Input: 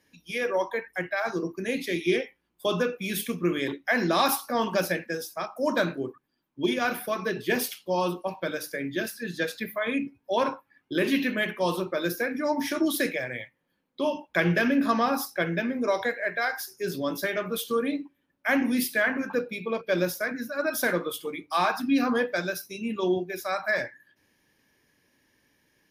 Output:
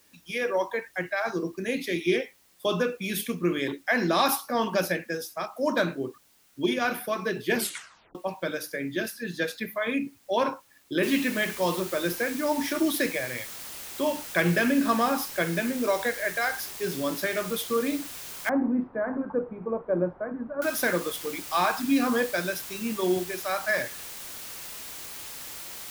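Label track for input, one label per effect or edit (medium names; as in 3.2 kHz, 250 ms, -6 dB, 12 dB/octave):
7.550000	7.550000	tape stop 0.60 s
11.030000	11.030000	noise floor step -62 dB -40 dB
18.490000	20.620000	low-pass 1.1 kHz 24 dB/octave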